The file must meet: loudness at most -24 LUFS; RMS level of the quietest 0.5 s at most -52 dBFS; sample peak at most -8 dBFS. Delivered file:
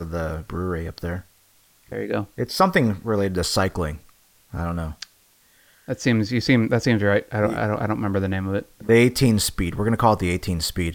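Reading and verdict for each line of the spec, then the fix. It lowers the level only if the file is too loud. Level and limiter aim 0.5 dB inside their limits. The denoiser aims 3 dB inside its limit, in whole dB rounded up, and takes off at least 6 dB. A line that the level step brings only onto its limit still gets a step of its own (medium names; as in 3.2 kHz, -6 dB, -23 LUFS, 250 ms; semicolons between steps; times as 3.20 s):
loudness -22.5 LUFS: fail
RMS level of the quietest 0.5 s -58 dBFS: pass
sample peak -4.0 dBFS: fail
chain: trim -2 dB; peak limiter -8.5 dBFS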